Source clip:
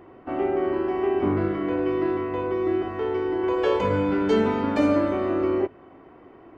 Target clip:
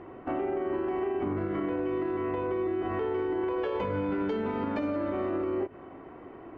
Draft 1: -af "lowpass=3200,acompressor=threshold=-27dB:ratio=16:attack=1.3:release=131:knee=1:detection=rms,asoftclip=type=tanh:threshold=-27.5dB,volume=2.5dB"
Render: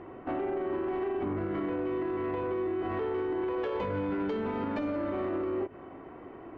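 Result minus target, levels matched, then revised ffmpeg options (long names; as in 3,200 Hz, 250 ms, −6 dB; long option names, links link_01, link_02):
soft clipping: distortion +19 dB
-af "lowpass=3200,acompressor=threshold=-27dB:ratio=16:attack=1.3:release=131:knee=1:detection=rms,asoftclip=type=tanh:threshold=-16.5dB,volume=2.5dB"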